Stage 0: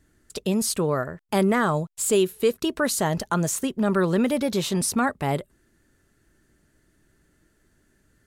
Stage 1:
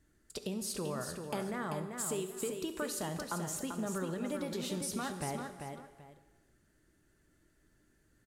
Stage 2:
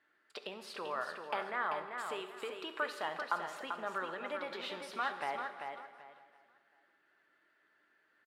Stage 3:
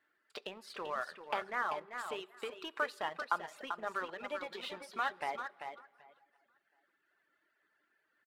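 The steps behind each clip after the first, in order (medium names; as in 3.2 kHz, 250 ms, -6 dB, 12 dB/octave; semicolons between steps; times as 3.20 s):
compression, threshold -27 dBFS, peak gain reduction 11 dB; multi-tap echo 69/390/776 ms -16.5/-6/-18.5 dB; gated-style reverb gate 460 ms falling, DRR 9 dB; trim -8 dB
high-pass 990 Hz 12 dB/octave; distance through air 410 m; feedback delay 554 ms, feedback 36%, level -22.5 dB; trim +10.5 dB
reverb removal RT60 0.96 s; in parallel at -3 dB: crossover distortion -45.5 dBFS; on the sum: trim -2.5 dB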